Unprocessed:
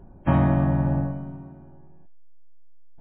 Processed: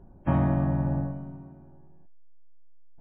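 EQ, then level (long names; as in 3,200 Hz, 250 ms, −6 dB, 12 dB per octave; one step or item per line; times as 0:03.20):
high-shelf EQ 2,400 Hz −7.5 dB
−4.0 dB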